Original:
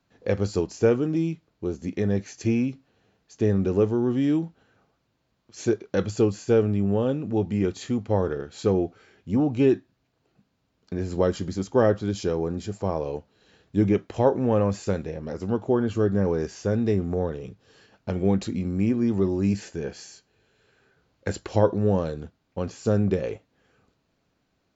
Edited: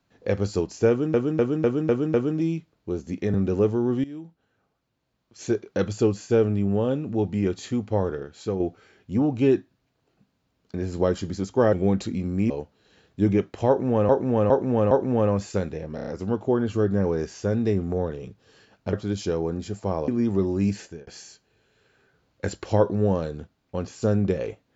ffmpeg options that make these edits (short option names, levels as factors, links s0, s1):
-filter_complex "[0:a]asplit=21[s0][s1][s2][s3][s4][s5][s6][s7][s8][s9][s10][s11][s12][s13][s14][s15][s16][s17][s18][s19][s20];[s0]atrim=end=1.142[s21];[s1]atrim=start=0.888:end=1.142[s22];[s2]atrim=start=0.888:end=1.142[s23];[s3]atrim=start=0.888:end=1.142[s24];[s4]atrim=start=0.888:end=1.142[s25];[s5]atrim=start=0.888:end=2.092[s26];[s6]atrim=start=3.518:end=4.22,asetpts=PTS-STARTPTS,afade=t=out:st=0.698:d=0.004:c=hsin:silence=0.125893[s27];[s7]atrim=start=4.22:end=8.78,asetpts=PTS-STARTPTS,afade=t=in:d=1.71:silence=0.125893,afade=t=out:st=3.83:d=0.73:silence=0.473151[s28];[s8]atrim=start=8.78:end=11.912,asetpts=PTS-STARTPTS,afade=t=in:d=0.004:c=hsin:silence=0.473151[s29];[s9]atrim=start=18.138:end=18.912[s30];[s10]atrim=start=13.058:end=14.652[s31];[s11]atrim=start=14.238:end=14.652[s32];[s12]atrim=start=14.238:end=14.652[s33];[s13]atrim=start=14.238:end=15.312[s34];[s14]atrim=start=15.278:end=15.312[s35];[s15]atrim=start=15.278:end=15.312[s36];[s16]atrim=start=15.278:end=15.312[s37];[s17]atrim=start=15.278:end=18.142[s38];[s18]atrim=start=11.908:end=13.062[s39];[s19]atrim=start=18.908:end=19.9,asetpts=PTS-STARTPTS,afade=t=out:st=0.722:d=0.27[s40];[s20]atrim=start=19.9,asetpts=PTS-STARTPTS,afade=t=in:d=0.004:c=hsin[s41];[s21][s22]acrossfade=d=0.004:c1=hsin:c2=hsin[s42];[s42][s23]acrossfade=d=0.004:c1=hsin:c2=hsin[s43];[s43][s24]acrossfade=d=0.004:c1=hsin:c2=hsin[s44];[s44][s25]acrossfade=d=0.004:c1=hsin:c2=hsin[s45];[s45][s26]acrossfade=d=0.004:c1=hsin:c2=hsin[s46];[s27][s28][s29]concat=n=3:v=0:a=1[s47];[s46][s47]acrossfade=d=0.004:c1=hsin:c2=hsin[s48];[s48][s30]acrossfade=d=0.004:c1=hsin:c2=hsin[s49];[s49][s31]acrossfade=d=0.004:c1=hsin:c2=hsin[s50];[s50][s32]acrossfade=d=0.004:c1=hsin:c2=hsin[s51];[s51][s33]acrossfade=d=0.004:c1=hsin:c2=hsin[s52];[s52][s34]acrossfade=d=0.004:c1=hsin:c2=hsin[s53];[s53][s35]acrossfade=d=0.004:c1=hsin:c2=hsin[s54];[s54][s36]acrossfade=d=0.004:c1=hsin:c2=hsin[s55];[s55][s37]acrossfade=d=0.004:c1=hsin:c2=hsin[s56];[s56][s38]acrossfade=d=0.004:c1=hsin:c2=hsin[s57];[s57][s39]acrossfade=d=0.004:c1=hsin:c2=hsin[s58];[s40][s41]concat=n=2:v=0:a=1[s59];[s58][s59]acrossfade=d=0.004:c1=hsin:c2=hsin"